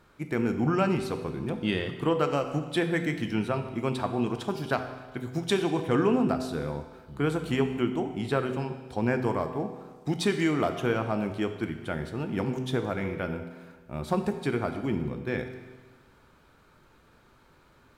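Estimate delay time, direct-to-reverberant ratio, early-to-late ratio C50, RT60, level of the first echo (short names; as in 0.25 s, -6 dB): none, 6.5 dB, 9.0 dB, 1.4 s, none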